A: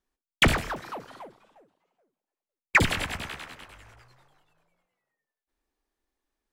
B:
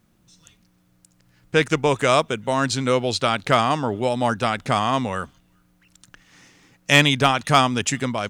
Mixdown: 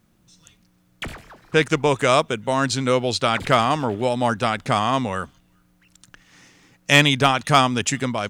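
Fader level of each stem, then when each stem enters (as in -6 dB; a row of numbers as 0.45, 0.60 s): -12.0, +0.5 dB; 0.60, 0.00 s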